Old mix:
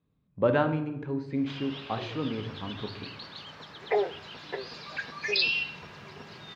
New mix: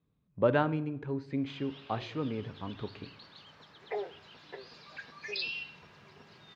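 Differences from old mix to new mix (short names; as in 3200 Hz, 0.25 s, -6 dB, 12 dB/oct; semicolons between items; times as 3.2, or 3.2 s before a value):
speech: send -9.5 dB; background -10.0 dB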